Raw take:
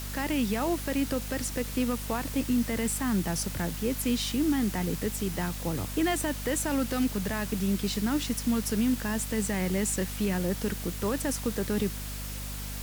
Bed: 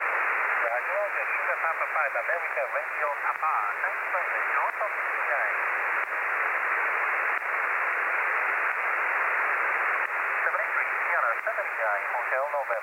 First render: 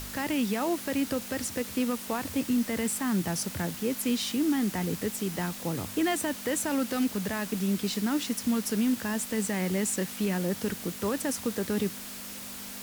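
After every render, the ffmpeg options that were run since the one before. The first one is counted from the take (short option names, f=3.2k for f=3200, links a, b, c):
-af "bandreject=f=50:t=h:w=4,bandreject=f=100:t=h:w=4,bandreject=f=150:t=h:w=4"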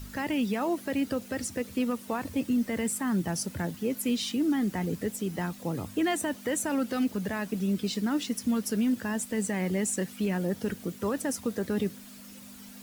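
-af "afftdn=nr=11:nf=-41"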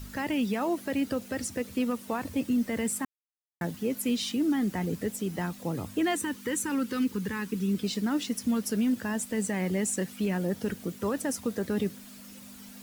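-filter_complex "[0:a]asettb=1/sr,asplit=3[a][b][c];[a]atrim=end=6.154[d];[b]atrim=start=6.15:end=7.75,asetpts=PTS-STARTPTS,afade=t=in:d=0.004:c=qsin,afade=t=out:st=1.596:d=0.004:c=qsin,asuperstop=centerf=670:order=4:qfactor=1.8[e];[c]atrim=start=7.746[f];[d][e]acrossfade=d=0.004:c1=hsin:c2=qsin[g];[g][f]acrossfade=d=0.004:c1=qsin:c2=hsin,asplit=3[h][i][j];[h]atrim=end=3.05,asetpts=PTS-STARTPTS,afade=t=out:st=3.046:d=0.004:c=hsin[k];[i]atrim=start=3.05:end=3.61,asetpts=PTS-STARTPTS,volume=0[l];[j]atrim=start=3.61,asetpts=PTS-STARTPTS,afade=t=in:d=0.004:c=hsin[m];[k][l][m]concat=n=3:v=0:a=1"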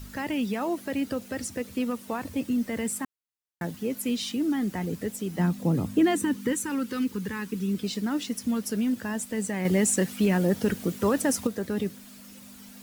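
-filter_complex "[0:a]asettb=1/sr,asplit=3[a][b][c];[a]atrim=end=5.394[d];[b]atrim=start=5.39:end=6.53,asetpts=PTS-STARTPTS,afade=t=in:d=0.004:c=qsin,afade=t=out:st=1.136:d=0.004:c=qsin,equalizer=f=190:w=0.63:g=10[e];[c]atrim=start=6.526[f];[d][e]acrossfade=d=0.004:c1=hsin:c2=qsin[g];[g][f]acrossfade=d=0.004:c1=qsin:c2=hsin,asplit=3[h][i][j];[h]atrim=end=9.652[k];[i]atrim=start=9.648:end=11.472,asetpts=PTS-STARTPTS,volume=6dB[l];[j]atrim=start=11.468[m];[k][l]acrossfade=d=0.004:c1=hsin:c2=hsin[n];[n][m]acrossfade=d=0.004:c1=hsin:c2=hsin"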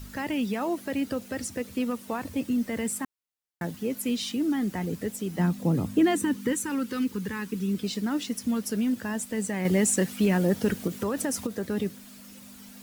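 -filter_complex "[0:a]asettb=1/sr,asplit=3[a][b][c];[a]atrim=end=10.874[d];[b]atrim=start=10.87:end=11.64,asetpts=PTS-STARTPTS,afade=t=in:d=0.004:c=qsin,afade=t=out:st=0.766:d=0.004:c=qsin,acompressor=threshold=-24dB:ratio=4:attack=3.2:release=140:knee=1:detection=peak[e];[c]atrim=start=11.636[f];[d][e]acrossfade=d=0.004:c1=hsin:c2=qsin[g];[g][f]acrossfade=d=0.004:c1=qsin:c2=hsin"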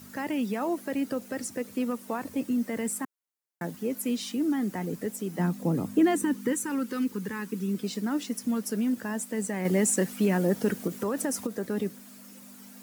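-af "highpass=170,equalizer=f=3.4k:t=o:w=1.3:g=-5.5"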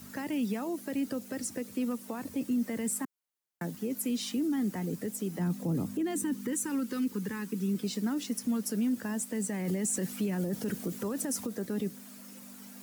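-filter_complex "[0:a]alimiter=limit=-22.5dB:level=0:latency=1:release=10,acrossover=split=330|3000[a][b][c];[b]acompressor=threshold=-42dB:ratio=2.5[d];[a][d][c]amix=inputs=3:normalize=0"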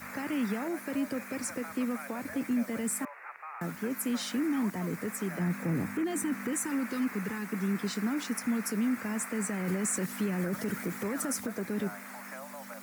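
-filter_complex "[1:a]volume=-17.5dB[a];[0:a][a]amix=inputs=2:normalize=0"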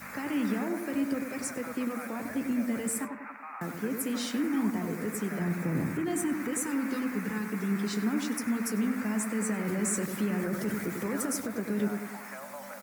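-filter_complex "[0:a]asplit=2[a][b];[b]adelay=14,volume=-11.5dB[c];[a][c]amix=inputs=2:normalize=0,asplit=2[d][e];[e]adelay=97,lowpass=f=1.2k:p=1,volume=-5dB,asplit=2[f][g];[g]adelay=97,lowpass=f=1.2k:p=1,volume=0.54,asplit=2[h][i];[i]adelay=97,lowpass=f=1.2k:p=1,volume=0.54,asplit=2[j][k];[k]adelay=97,lowpass=f=1.2k:p=1,volume=0.54,asplit=2[l][m];[m]adelay=97,lowpass=f=1.2k:p=1,volume=0.54,asplit=2[n][o];[o]adelay=97,lowpass=f=1.2k:p=1,volume=0.54,asplit=2[p][q];[q]adelay=97,lowpass=f=1.2k:p=1,volume=0.54[r];[d][f][h][j][l][n][p][r]amix=inputs=8:normalize=0"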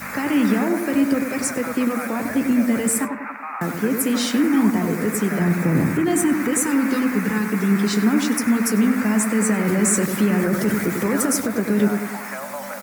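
-af "volume=11.5dB"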